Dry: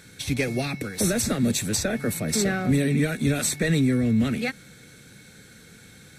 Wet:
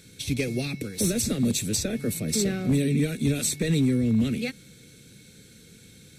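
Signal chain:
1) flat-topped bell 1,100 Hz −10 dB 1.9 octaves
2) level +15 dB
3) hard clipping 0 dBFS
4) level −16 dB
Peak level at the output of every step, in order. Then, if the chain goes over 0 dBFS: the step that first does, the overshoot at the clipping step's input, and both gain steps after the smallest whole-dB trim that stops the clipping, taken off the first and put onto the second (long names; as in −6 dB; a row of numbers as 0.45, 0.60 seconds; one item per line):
−11.0, +4.0, 0.0, −16.0 dBFS
step 2, 4.0 dB
step 2 +11 dB, step 4 −12 dB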